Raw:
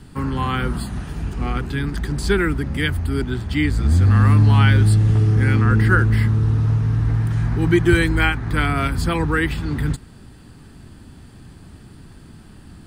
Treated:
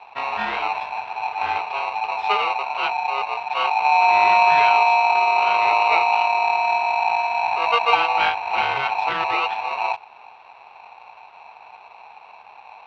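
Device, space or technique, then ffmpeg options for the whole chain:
ring modulator pedal into a guitar cabinet: -af "aeval=exprs='val(0)*sgn(sin(2*PI*820*n/s))':c=same,highpass=94,equalizer=f=150:t=q:w=4:g=-7,equalizer=f=280:t=q:w=4:g=-8,equalizer=f=570:t=q:w=4:g=-8,equalizer=f=830:t=q:w=4:g=8,equalizer=f=1.4k:t=q:w=4:g=9,equalizer=f=2.7k:t=q:w=4:g=7,lowpass=f=3.7k:w=0.5412,lowpass=f=3.7k:w=1.3066,volume=-6dB"

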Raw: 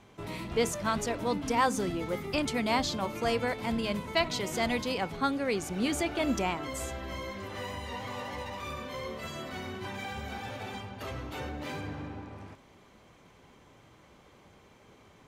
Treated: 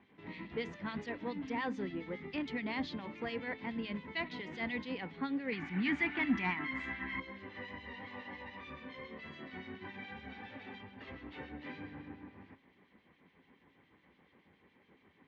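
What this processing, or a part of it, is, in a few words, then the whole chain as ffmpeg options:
guitar amplifier with harmonic tremolo: -filter_complex "[0:a]asettb=1/sr,asplit=3[a][b][c];[a]atrim=end=5.524[d];[b]atrim=start=5.52:end=7.2,asetpts=PTS-STARTPTS,afade=t=in:d=0.004:c=qsin,afade=t=out:st=1.676:d=0.004:c=qsin,equalizer=f=125:t=o:w=1:g=5,equalizer=f=250:t=o:w=1:g=7,equalizer=f=500:t=o:w=1:g=-10,equalizer=f=1k:t=o:w=1:g=8,equalizer=f=2k:t=o:w=1:g=11[e];[c]atrim=start=7.196[f];[d][e]acrossfade=d=0.004:c1=hsin:c2=qsin[g];[g][f]acrossfade=d=0.004:c1=qsin:c2=hsin,acrossover=split=2300[h][i];[h]aeval=exprs='val(0)*(1-0.7/2+0.7/2*cos(2*PI*7.1*n/s))':c=same[j];[i]aeval=exprs='val(0)*(1-0.7/2-0.7/2*cos(2*PI*7.1*n/s))':c=same[k];[j][k]amix=inputs=2:normalize=0,asoftclip=type=tanh:threshold=-21.5dB,highpass=81,equalizer=f=120:t=q:w=4:g=-10,equalizer=f=180:t=q:w=4:g=4,equalizer=f=270:t=q:w=4:g=6,equalizer=f=630:t=q:w=4:g=-7,equalizer=f=1.3k:t=q:w=4:g=-5,equalizer=f=1.9k:t=q:w=4:g=9,lowpass=f=3.7k:w=0.5412,lowpass=f=3.7k:w=1.3066,volume=-6dB"

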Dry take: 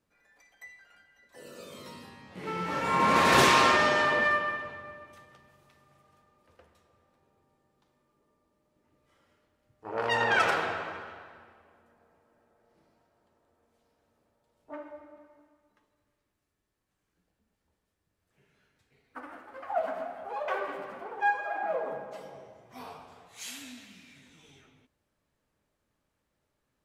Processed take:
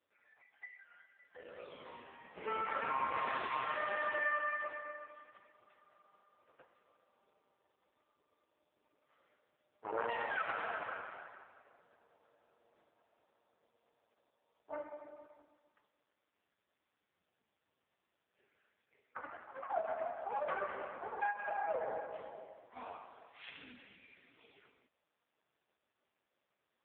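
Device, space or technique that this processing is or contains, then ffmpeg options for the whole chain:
voicemail: -af "highpass=400,lowpass=3.2k,acompressor=threshold=-32dB:ratio=6,volume=1dB" -ar 8000 -c:a libopencore_amrnb -b:a 4750

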